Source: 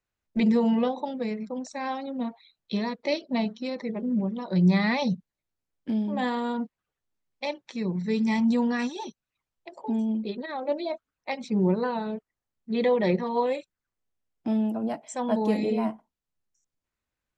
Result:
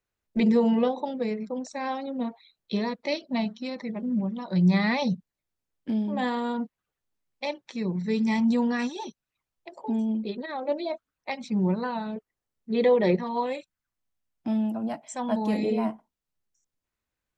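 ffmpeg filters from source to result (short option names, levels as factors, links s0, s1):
-af "asetnsamples=n=441:p=0,asendcmd='2.94 equalizer g -6.5;4.74 equalizer g 0;11.3 equalizer g -8;12.16 equalizer g 4;13.15 equalizer g -7.5;15.53 equalizer g 0.5',equalizer=f=430:t=o:w=0.6:g=3.5"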